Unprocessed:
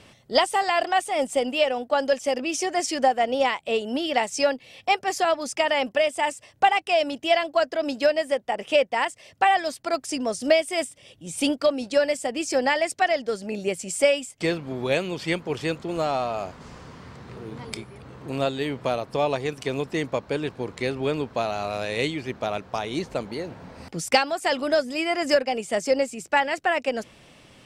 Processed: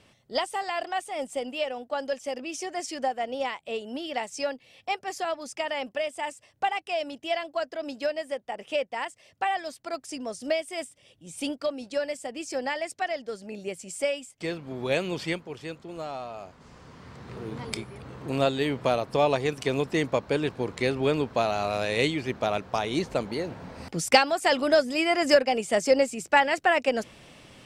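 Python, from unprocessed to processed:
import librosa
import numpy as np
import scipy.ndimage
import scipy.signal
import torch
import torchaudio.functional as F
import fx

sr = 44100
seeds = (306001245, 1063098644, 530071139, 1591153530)

y = fx.gain(x, sr, db=fx.line((14.41, -8.0), (15.19, 0.0), (15.5, -10.5), (16.49, -10.5), (17.42, 1.0)))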